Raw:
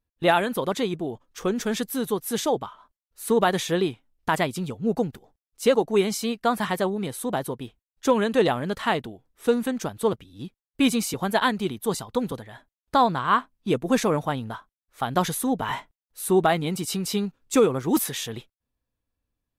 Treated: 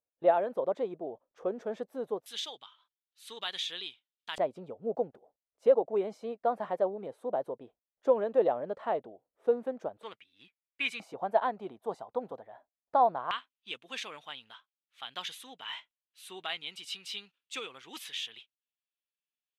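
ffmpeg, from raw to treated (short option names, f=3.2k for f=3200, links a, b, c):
-af "asetnsamples=n=441:p=0,asendcmd='2.26 bandpass f 3400;4.38 bandpass f 590;10.03 bandpass f 2300;11 bandpass f 680;13.31 bandpass f 3000',bandpass=f=590:t=q:w=3.1:csg=0"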